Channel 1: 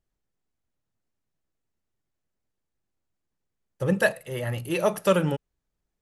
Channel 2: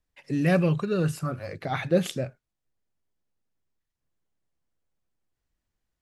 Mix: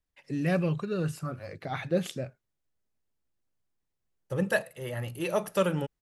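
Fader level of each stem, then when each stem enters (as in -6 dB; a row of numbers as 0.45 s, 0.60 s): -5.0 dB, -5.0 dB; 0.50 s, 0.00 s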